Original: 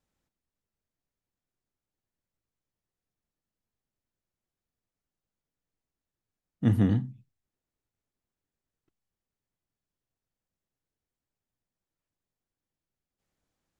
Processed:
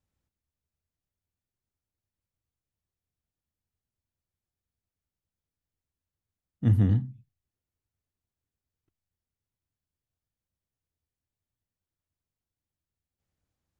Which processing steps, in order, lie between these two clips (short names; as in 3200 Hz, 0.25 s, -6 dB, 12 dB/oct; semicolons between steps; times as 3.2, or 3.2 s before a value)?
bell 81 Hz +12.5 dB 1.3 oct; gain -5 dB